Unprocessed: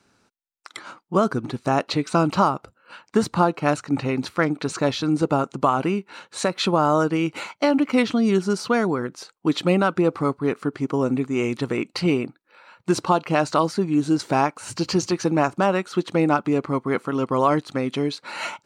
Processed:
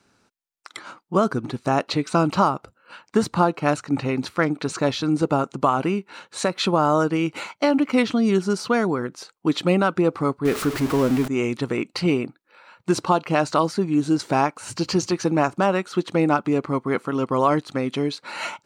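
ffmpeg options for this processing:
-filter_complex "[0:a]asettb=1/sr,asplit=3[s0][s1][s2];[s0]atrim=end=10.454[s3];[s1]atrim=start=10.45:end=11.28,asetpts=PTS-STARTPTS,afade=t=in:d=0.004:c=qsin,afade=t=out:st=0.826:d=0.004:c=qsin,aeval=exprs='val(0)+0.5*0.0631*sgn(val(0))':c=same[s4];[s2]atrim=start=11.276[s5];[s3][s4]acrossfade=d=0.004:c1=hsin:c2=qsin[s6];[s6][s5]acrossfade=d=0.004:c1=qsin:c2=hsin"

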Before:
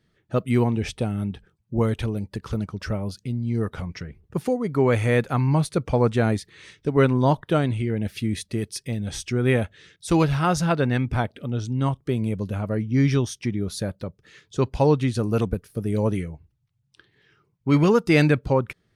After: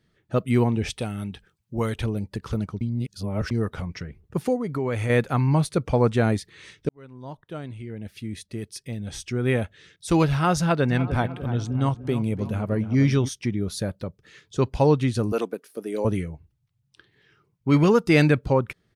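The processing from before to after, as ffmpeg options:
-filter_complex "[0:a]asettb=1/sr,asplit=3[s0][s1][s2];[s0]atrim=end=0.904[s3];[s1]atrim=start=0.9:end=1.95,asetpts=PTS-STARTPTS,afade=t=in:d=0.004:c=qsin,afade=t=out:st=1.046:d=0.004:c=qsin,tiltshelf=f=1100:g=-5[s4];[s2]atrim=start=1.946[s5];[s3][s4]acrossfade=d=0.004:c1=hsin:c2=qsin[s6];[s6][s5]acrossfade=d=0.004:c1=qsin:c2=hsin,asettb=1/sr,asplit=3[s7][s8][s9];[s7]atrim=end=4.604[s10];[s8]atrim=start=4.6:end=5.1,asetpts=PTS-STARTPTS,afade=t=in:d=0.004:c=qsin,afade=t=out:st=0.496:d=0.004:c=qsin,acompressor=threshold=0.0631:ratio=3:attack=3.2:release=140:knee=1:detection=peak[s11];[s9]atrim=start=5.096[s12];[s10][s11]acrossfade=d=0.004:c1=hsin:c2=qsin[s13];[s13][s12]acrossfade=d=0.004:c1=qsin:c2=hsin,asplit=3[s14][s15][s16];[s14]afade=t=out:st=10.88:d=0.02[s17];[s15]asplit=2[s18][s19];[s19]adelay=299,lowpass=f=2000:p=1,volume=0.266,asplit=2[s20][s21];[s21]adelay=299,lowpass=f=2000:p=1,volume=0.49,asplit=2[s22][s23];[s23]adelay=299,lowpass=f=2000:p=1,volume=0.49,asplit=2[s24][s25];[s25]adelay=299,lowpass=f=2000:p=1,volume=0.49,asplit=2[s26][s27];[s27]adelay=299,lowpass=f=2000:p=1,volume=0.49[s28];[s18][s20][s22][s24][s26][s28]amix=inputs=6:normalize=0,afade=t=in:st=10.88:d=0.02,afade=t=out:st=13.27:d=0.02[s29];[s16]afade=t=in:st=13.27:d=0.02[s30];[s17][s29][s30]amix=inputs=3:normalize=0,asettb=1/sr,asplit=3[s31][s32][s33];[s31]atrim=end=15.324[s34];[s32]atrim=start=15.32:end=16.05,asetpts=PTS-STARTPTS,afade=t=in:d=0.004:c=qsin,afade=t=out:st=0.726:d=0.004:c=qsin,highpass=f=280:w=0.5412,highpass=f=280:w=1.3066[s35];[s33]atrim=start=16.046[s36];[s34][s35]acrossfade=d=0.004:c1=hsin:c2=qsin[s37];[s37][s36]acrossfade=d=0.004:c1=qsin:c2=hsin,asplit=4[s38][s39][s40][s41];[s38]atrim=end=2.812[s42];[s39]atrim=start=2.808:end=3.512,asetpts=PTS-STARTPTS,areverse[s43];[s40]atrim=start=3.508:end=6.89,asetpts=PTS-STARTPTS,afade=t=out:st=3.378:d=0.004:c=hsin[s44];[s41]atrim=start=6.89,asetpts=PTS-STARTPTS,afade=t=in:d=3.45[s45];[s42][s43]acrossfade=d=0.004:c1=hsin:c2=hsin[s46];[s44][s45]concat=n=2:v=0:a=1[s47];[s46][s47]acrossfade=d=0.004:c1=hsin:c2=hsin"

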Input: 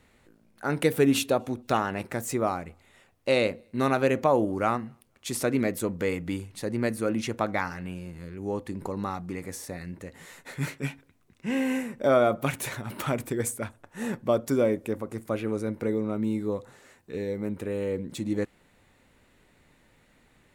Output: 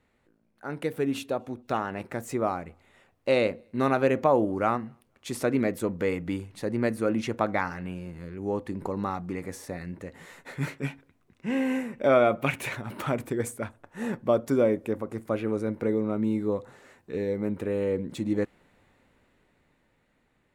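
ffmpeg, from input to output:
-filter_complex "[0:a]asettb=1/sr,asplit=3[s0][s1][s2];[s0]atrim=end=11.934[s3];[s1]atrim=start=11.93:end=12.76,asetpts=PTS-STARTPTS,afade=t=in:d=0.004:c=qsin,afade=t=out:st=0.826:d=0.004:c=qsin,equalizer=f=2500:t=o:w=0.67:g=8.5[s4];[s2]atrim=start=12.756[s5];[s3][s4]acrossfade=d=0.004:c1=hsin:c2=qsin[s6];[s6][s5]acrossfade=d=0.004:c1=qsin:c2=hsin,highshelf=f=3400:g=-9,dynaudnorm=f=180:g=21:m=3.16,lowshelf=f=150:g=-3.5,volume=0.473"

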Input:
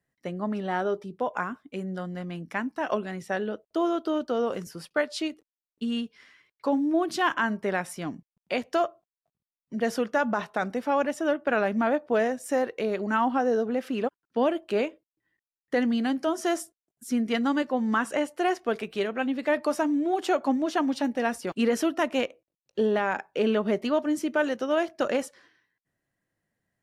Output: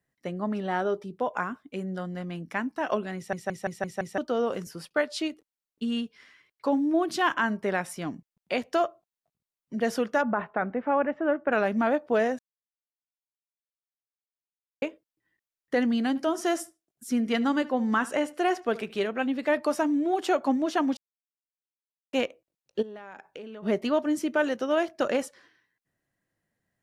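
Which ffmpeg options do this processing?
-filter_complex "[0:a]asplit=3[s0][s1][s2];[s0]afade=t=out:st=10.21:d=0.02[s3];[s1]lowpass=f=2200:w=0.5412,lowpass=f=2200:w=1.3066,afade=t=in:st=10.21:d=0.02,afade=t=out:st=11.51:d=0.02[s4];[s2]afade=t=in:st=11.51:d=0.02[s5];[s3][s4][s5]amix=inputs=3:normalize=0,asettb=1/sr,asplit=3[s6][s7][s8];[s6]atrim=end=16.084[s9];[s7]atrim=start=16.08:end=19.07,asetpts=PTS-STARTPTS,afade=t=in:d=0.004:c=qsin,afade=t=out:st=2.986:d=0.004:c=qsin,asplit=2[s10][s11];[s11]adelay=74,lowpass=f=4600:p=1,volume=0.112,asplit=2[s12][s13];[s13]adelay=74,lowpass=f=4600:p=1,volume=0.22[s14];[s10][s12][s14]amix=inputs=3:normalize=0,atrim=end_sample=131859[s15];[s8]atrim=start=19.066[s16];[s9][s15]acrossfade=d=0.004:c1=hsin:c2=qsin[s17];[s17][s16]acrossfade=d=0.004:c1=qsin:c2=hsin,asplit=3[s18][s19][s20];[s18]afade=t=out:st=22.81:d=0.02[s21];[s19]acompressor=threshold=0.0126:ratio=12:attack=3.2:release=140:knee=1:detection=peak,afade=t=in:st=22.81:d=0.02,afade=t=out:st=23.62:d=0.02[s22];[s20]afade=t=in:st=23.62:d=0.02[s23];[s21][s22][s23]amix=inputs=3:normalize=0,asplit=11[s24][s25][s26][s27][s28][s29][s30][s31][s32][s33][s34];[s24]atrim=end=3.332[s35];[s25]atrim=start=3.158:end=3.332[s36];[s26]atrim=start=3.158:end=3.332[s37];[s27]atrim=start=3.158:end=3.332[s38];[s28]atrim=start=3.158:end=3.332[s39];[s29]atrim=start=3.158:end=3.332[s40];[s30]atrim=start=4.178:end=12.39,asetpts=PTS-STARTPTS,afade=t=out:st=8.208:d=0.004:c=hsin[s41];[s31]atrim=start=12.39:end=14.82,asetpts=PTS-STARTPTS,volume=0[s42];[s32]atrim=start=14.82:end=20.97,asetpts=PTS-STARTPTS,afade=t=in:d=0.004:c=hsin,afade=t=out:st=6.146:d=0.004:c=hsin[s43];[s33]atrim=start=20.97:end=22.13,asetpts=PTS-STARTPTS,volume=0[s44];[s34]atrim=start=22.13,asetpts=PTS-STARTPTS,afade=t=in:d=0.004:c=hsin[s45];[s35][s36]acrossfade=d=0.004:c1=hsin:c2=hsin[s46];[s46][s37]acrossfade=d=0.004:c1=hsin:c2=hsin[s47];[s47][s38]acrossfade=d=0.004:c1=hsin:c2=hsin[s48];[s48][s39]acrossfade=d=0.004:c1=hsin:c2=hsin[s49];[s49][s40]acrossfade=d=0.004:c1=hsin:c2=hsin[s50];[s41][s42][s43][s44][s45]concat=n=5:v=0:a=1[s51];[s50][s51]acrossfade=d=0.004:c1=hsin:c2=hsin"

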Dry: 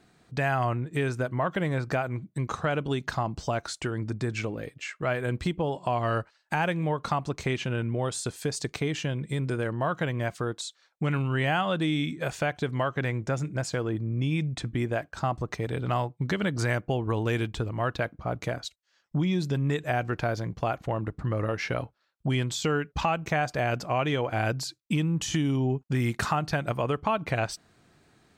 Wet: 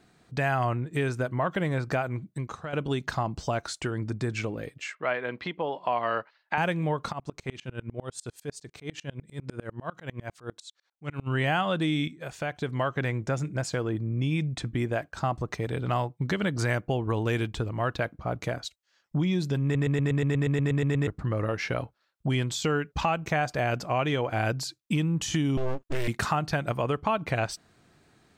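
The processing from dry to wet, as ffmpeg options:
-filter_complex "[0:a]asettb=1/sr,asplit=3[s0][s1][s2];[s0]atrim=end=4.954[s3];[s1]atrim=start=4.95:end=6.58,asetpts=PTS-STARTPTS,afade=t=in:d=0.004:c=qsin,afade=t=out:st=1.626:d=0.004:c=qsin,highpass=300,equalizer=f=350:t=q:w=4:g=-4,equalizer=f=1000:t=q:w=4:g=3,equalizer=f=2000:t=q:w=4:g=4,lowpass=f=4300:w=0.5412,lowpass=f=4300:w=1.3066[s4];[s2]atrim=start=6.576[s5];[s3][s4]acrossfade=d=0.004:c1=hsin:c2=qsin[s6];[s6][s5]acrossfade=d=0.004:c1=qsin:c2=hsin,asplit=3[s7][s8][s9];[s7]afade=t=out:st=7.11:d=0.02[s10];[s8]aeval=exprs='val(0)*pow(10,-30*if(lt(mod(-10*n/s,1),2*abs(-10)/1000),1-mod(-10*n/s,1)/(2*abs(-10)/1000),(mod(-10*n/s,1)-2*abs(-10)/1000)/(1-2*abs(-10)/1000))/20)':c=same,afade=t=in:st=7.11:d=0.02,afade=t=out:st=11.26:d=0.02[s11];[s9]afade=t=in:st=11.26:d=0.02[s12];[s10][s11][s12]amix=inputs=3:normalize=0,asettb=1/sr,asplit=3[s13][s14][s15];[s13]atrim=end=25.574[s16];[s14]atrim=start=25.57:end=26.08,asetpts=PTS-STARTPTS,afade=t=in:d=0.004:c=qsin,afade=t=out:st=0.506:d=0.004:c=qsin,aeval=exprs='abs(val(0))':c=same[s17];[s15]atrim=start=26.076[s18];[s16][s17]acrossfade=d=0.004:c1=hsin:c2=qsin[s19];[s19][s18]acrossfade=d=0.004:c1=qsin:c2=hsin,asplit=15[s20][s21][s22][s23][s24][s25][s26][s27][s28][s29][s30][s31][s32][s33][s34];[s20]atrim=end=2.73,asetpts=PTS-STARTPTS,afade=t=out:st=2.29:d=0.44:c=qua:silence=0.316228[s35];[s21]atrim=start=2.73:end=12.08,asetpts=PTS-STARTPTS,afade=t=in:d=0.004:c=hsin:silence=0.316228,afade=t=out:st=9.346:d=0.004:c=hsin:silence=0.251189[s36];[s22]atrim=start=12.08:end=19.752,asetpts=PTS-STARTPTS,afade=t=in:d=0.78:silence=0.251189[s37];[s23]atrim=start=19.628:end=19.752[s38];[s24]atrim=start=19.628:end=19.752[s39];[s25]atrim=start=19.628:end=19.752[s40];[s26]atrim=start=19.628:end=19.752[s41];[s27]atrim=start=19.628:end=19.752[s42];[s28]atrim=start=19.628:end=19.752[s43];[s29]atrim=start=19.628:end=19.752[s44];[s30]atrim=start=19.628:end=19.752[s45];[s31]atrim=start=19.628:end=19.752[s46];[s32]atrim=start=19.628:end=19.752[s47];[s33]atrim=start=19.628:end=19.752[s48];[s34]atrim=start=21.068[s49];[s35][s36][s37]concat=n=3:v=0:a=1[s50];[s50][s38]acrossfade=d=0.004:c1=hsin:c2=hsin[s51];[s51][s39]acrossfade=d=0.004:c1=hsin:c2=hsin[s52];[s52][s40]acrossfade=d=0.004:c1=hsin:c2=hsin[s53];[s53][s41]acrossfade=d=0.004:c1=hsin:c2=hsin[s54];[s54][s42]acrossfade=d=0.004:c1=hsin:c2=hsin[s55];[s55][s43]acrossfade=d=0.004:c1=hsin:c2=hsin[s56];[s56][s44]acrossfade=d=0.004:c1=hsin:c2=hsin[s57];[s57][s45]acrossfade=d=0.004:c1=hsin:c2=hsin[s58];[s58][s46]acrossfade=d=0.004:c1=hsin:c2=hsin[s59];[s59][s47]acrossfade=d=0.004:c1=hsin:c2=hsin[s60];[s60][s48]acrossfade=d=0.004:c1=hsin:c2=hsin[s61];[s61][s49]acrossfade=d=0.004:c1=hsin:c2=hsin"

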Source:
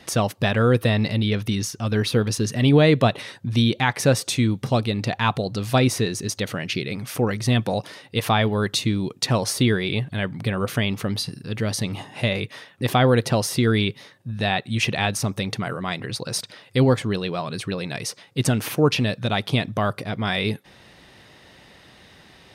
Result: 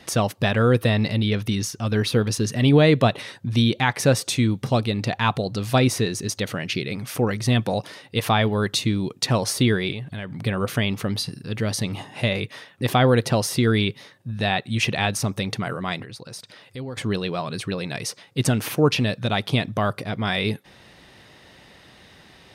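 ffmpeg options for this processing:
-filter_complex "[0:a]asettb=1/sr,asplit=3[s0][s1][s2];[s0]atrim=end=9.914[s3];[s1]atrim=start=9.91:end=10.45,asetpts=PTS-STARTPTS,afade=t=in:d=0.004:c=qsin,afade=t=out:st=0.536:d=0.004:c=qsin,acompressor=threshold=0.0398:ratio=6:attack=3.2:release=140:knee=1:detection=peak[s4];[s2]atrim=start=10.446[s5];[s3][s4]acrossfade=d=0.004:c1=hsin:c2=qsin[s6];[s6][s5]acrossfade=d=0.004:c1=qsin:c2=hsin,asettb=1/sr,asplit=3[s7][s8][s9];[s7]atrim=end=16.034[s10];[s8]atrim=start=16.03:end=16.97,asetpts=PTS-STARTPTS,afade=t=in:d=0.004:c=qsin,afade=t=out:st=0.936:d=0.004:c=qsin,acompressor=threshold=0.00708:ratio=2:attack=3.2:release=140:knee=1:detection=peak[s11];[s9]atrim=start=16.966[s12];[s10][s11]acrossfade=d=0.004:c1=hsin:c2=qsin[s13];[s13][s12]acrossfade=d=0.004:c1=qsin:c2=hsin"

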